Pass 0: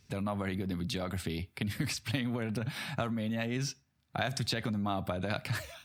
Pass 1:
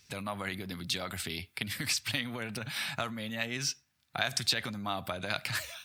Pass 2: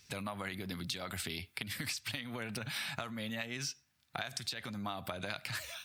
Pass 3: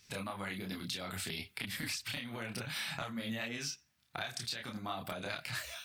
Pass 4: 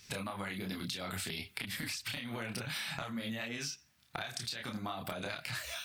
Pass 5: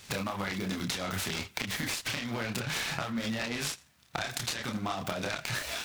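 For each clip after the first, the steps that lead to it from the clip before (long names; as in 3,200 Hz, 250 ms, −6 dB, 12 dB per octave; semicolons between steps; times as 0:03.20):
tilt shelving filter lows −7 dB, about 910 Hz
downward compressor 12 to 1, threshold −35 dBFS, peak gain reduction 13 dB
multi-voice chorus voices 6, 1.2 Hz, delay 29 ms, depth 3.7 ms; level +3 dB
downward compressor, threshold −42 dBFS, peak gain reduction 8 dB; level +6 dB
short delay modulated by noise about 1,700 Hz, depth 0.037 ms; level +6 dB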